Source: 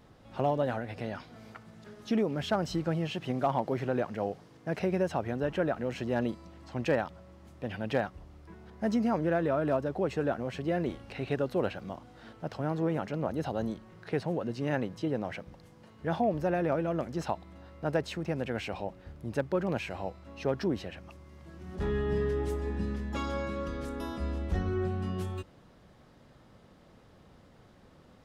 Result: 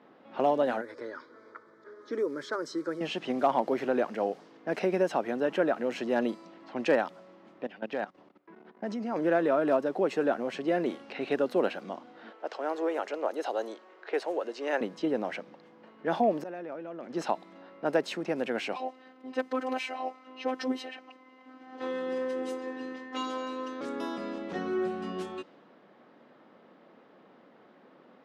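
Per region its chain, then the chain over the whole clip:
0.81–3.01 s: dynamic bell 740 Hz, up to -6 dB, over -44 dBFS, Q 1.5 + static phaser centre 740 Hz, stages 6
7.64–9.16 s: treble shelf 8.3 kHz -5.5 dB + hum notches 50/100/150 Hz + level held to a coarse grid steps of 17 dB
12.30–14.81 s: high-pass 370 Hz 24 dB/octave + peaking EQ 7.2 kHz +3.5 dB 0.39 oct
16.40–17.10 s: inverted gate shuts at -30 dBFS, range -24 dB + level flattener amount 70%
18.76–23.81 s: peaking EQ 240 Hz -12 dB 0.36 oct + comb 2.9 ms, depth 99% + robot voice 258 Hz
whole clip: high-pass 230 Hz 24 dB/octave; treble shelf 8.6 kHz -4 dB; level-controlled noise filter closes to 2.4 kHz, open at -30.5 dBFS; trim +3.5 dB

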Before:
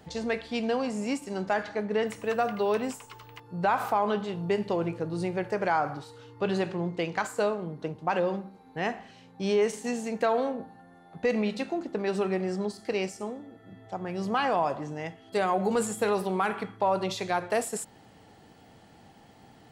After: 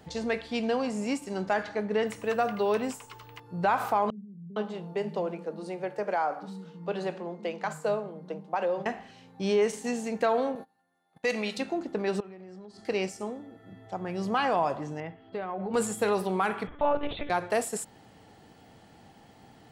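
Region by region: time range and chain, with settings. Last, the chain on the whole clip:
4.10–8.86 s: rippled Chebyshev high-pass 150 Hz, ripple 6 dB + bands offset in time lows, highs 460 ms, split 190 Hz
10.55–11.58 s: gate -41 dBFS, range -19 dB + tilt EQ +3 dB/octave
12.20–12.85 s: compression 16:1, threshold -41 dBFS + distance through air 72 m
15.00–15.74 s: compression 5:1, threshold -29 dBFS + distance through air 360 m
16.67–17.30 s: upward compressor, threshold -38 dBFS + monotone LPC vocoder at 8 kHz 290 Hz + loudspeaker Doppler distortion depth 0.13 ms
whole clip: none

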